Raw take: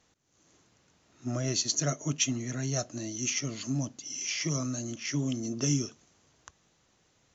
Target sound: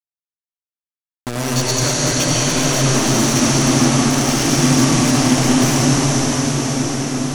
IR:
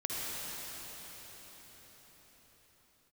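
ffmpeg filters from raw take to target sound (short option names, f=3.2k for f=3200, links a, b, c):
-filter_complex "[0:a]asettb=1/sr,asplit=3[a][b][c];[a]atrim=end=2.694[d];[b]atrim=start=2.69:end=4.85,asetpts=PTS-STARTPTS,afade=t=in:d=0.004:c=qsin,afade=t=out:st=2.156:d=0.004:c=qsin,equalizer=f=250:t=o:w=1:g=12,equalizer=f=1k:t=o:w=1:g=-5,equalizer=f=2k:t=o:w=1:g=-5,equalizer=f=4k:t=o:w=1:g=3[e];[c]atrim=start=4.846[f];[d][e]acrossfade=d=0.004:c1=hsin:c2=qsin[g];[g][f]acrossfade=d=0.004:c1=qsin:c2=hsin,acompressor=threshold=-27dB:ratio=6,acrusher=bits=4:mix=0:aa=0.000001[h];[1:a]atrim=start_sample=2205,asetrate=22491,aresample=44100[i];[h][i]afir=irnorm=-1:irlink=0,volume=5.5dB"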